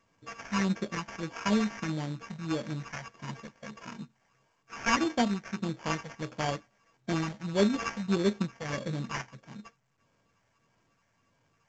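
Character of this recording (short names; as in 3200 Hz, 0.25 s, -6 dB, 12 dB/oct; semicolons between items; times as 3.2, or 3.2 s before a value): a buzz of ramps at a fixed pitch in blocks of 16 samples; phasing stages 8, 1.6 Hz, lowest notch 320–3600 Hz; aliases and images of a low sample rate 3900 Hz, jitter 0%; µ-law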